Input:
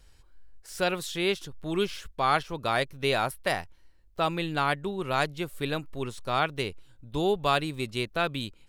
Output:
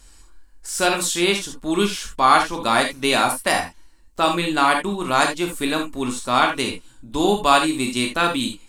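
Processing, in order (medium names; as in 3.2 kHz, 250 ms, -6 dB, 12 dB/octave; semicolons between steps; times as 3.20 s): graphic EQ 125/250/500/1000/8000 Hz -9/+8/-4/+5/+12 dB; gated-style reverb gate 100 ms flat, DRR 2 dB; trim +5 dB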